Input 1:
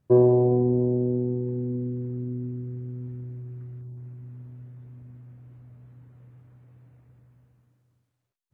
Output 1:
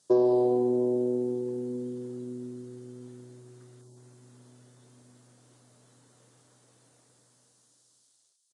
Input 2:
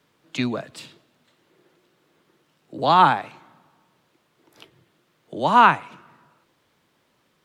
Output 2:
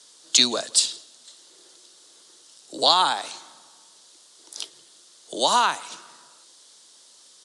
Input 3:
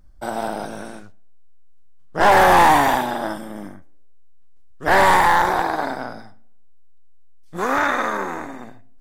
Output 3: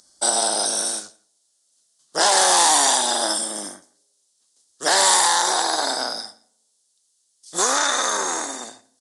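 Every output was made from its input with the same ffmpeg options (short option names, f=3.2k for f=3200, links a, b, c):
-filter_complex "[0:a]highpass=370,acompressor=threshold=-23dB:ratio=3,aexciter=amount=13.9:drive=2.3:freq=3.6k,asplit=2[a][b];[b]adelay=169.1,volume=-26dB,highshelf=f=4k:g=-3.8[c];[a][c]amix=inputs=2:normalize=0,aresample=22050,aresample=44100,volume=3dB"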